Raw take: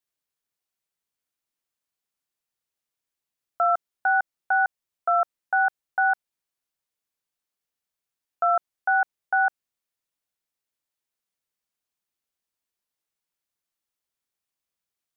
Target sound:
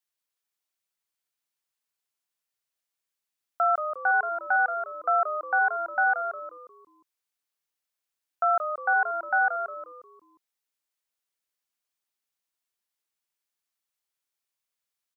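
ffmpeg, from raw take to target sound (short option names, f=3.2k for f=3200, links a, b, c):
-filter_complex "[0:a]lowshelf=f=480:g=-9,asplit=2[a][b];[b]asplit=5[c][d][e][f][g];[c]adelay=178,afreqshift=-90,volume=-8dB[h];[d]adelay=356,afreqshift=-180,volume=-16dB[i];[e]adelay=534,afreqshift=-270,volume=-23.9dB[j];[f]adelay=712,afreqshift=-360,volume=-31.9dB[k];[g]adelay=890,afreqshift=-450,volume=-39.8dB[l];[h][i][j][k][l]amix=inputs=5:normalize=0[m];[a][m]amix=inputs=2:normalize=0"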